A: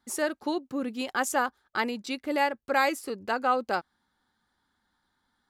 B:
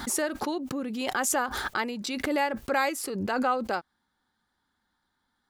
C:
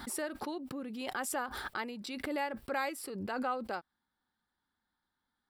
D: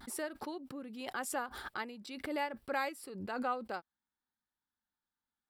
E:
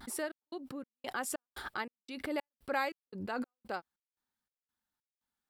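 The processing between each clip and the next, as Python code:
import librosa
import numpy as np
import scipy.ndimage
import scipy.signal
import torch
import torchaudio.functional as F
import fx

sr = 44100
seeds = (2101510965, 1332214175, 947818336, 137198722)

y1 = fx.pre_swell(x, sr, db_per_s=25.0)
y1 = F.gain(torch.from_numpy(y1), -2.0).numpy()
y2 = fx.peak_eq(y1, sr, hz=6500.0, db=-13.5, octaves=0.21)
y2 = F.gain(torch.from_numpy(y2), -8.5).numpy()
y3 = fx.vibrato(y2, sr, rate_hz=0.52, depth_cents=26.0)
y3 = fx.upward_expand(y3, sr, threshold_db=-53.0, expansion=1.5)
y4 = fx.step_gate(y3, sr, bpm=144, pattern='xxx..xxx..', floor_db=-60.0, edge_ms=4.5)
y4 = F.gain(torch.from_numpy(y4), 2.0).numpy()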